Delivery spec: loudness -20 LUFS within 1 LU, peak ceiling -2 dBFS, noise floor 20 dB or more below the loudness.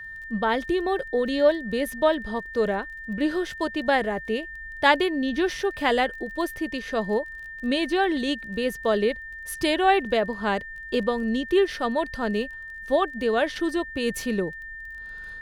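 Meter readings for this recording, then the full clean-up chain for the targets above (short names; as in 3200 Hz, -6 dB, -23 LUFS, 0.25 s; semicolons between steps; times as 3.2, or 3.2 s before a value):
ticks 23/s; steady tone 1800 Hz; tone level -36 dBFS; loudness -25.0 LUFS; peak -4.0 dBFS; loudness target -20.0 LUFS
-> de-click; notch 1800 Hz, Q 30; gain +5 dB; limiter -2 dBFS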